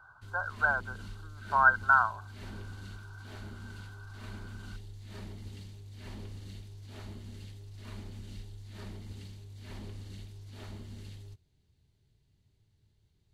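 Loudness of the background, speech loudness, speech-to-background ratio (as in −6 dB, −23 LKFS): −46.5 LKFS, −27.0 LKFS, 19.5 dB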